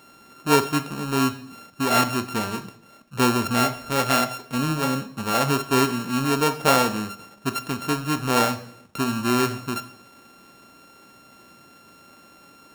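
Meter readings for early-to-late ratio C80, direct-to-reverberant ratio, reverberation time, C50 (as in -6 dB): 16.0 dB, 9.5 dB, 0.65 s, 13.0 dB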